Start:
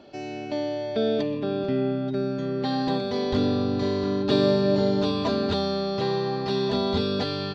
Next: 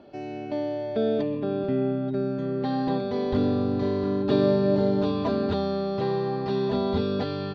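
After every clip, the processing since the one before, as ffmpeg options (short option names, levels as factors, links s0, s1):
-af "lowpass=f=1500:p=1"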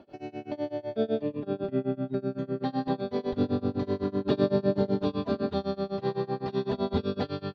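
-af "tremolo=f=7.9:d=0.96"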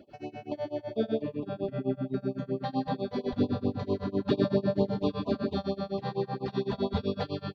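-af "afftfilt=real='re*(1-between(b*sr/1024,280*pow(1800/280,0.5+0.5*sin(2*PI*4.4*pts/sr))/1.41,280*pow(1800/280,0.5+0.5*sin(2*PI*4.4*pts/sr))*1.41))':imag='im*(1-between(b*sr/1024,280*pow(1800/280,0.5+0.5*sin(2*PI*4.4*pts/sr))/1.41,280*pow(1800/280,0.5+0.5*sin(2*PI*4.4*pts/sr))*1.41))':win_size=1024:overlap=0.75"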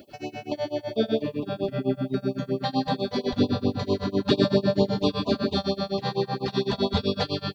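-af "crystalizer=i=4:c=0,volume=1.68"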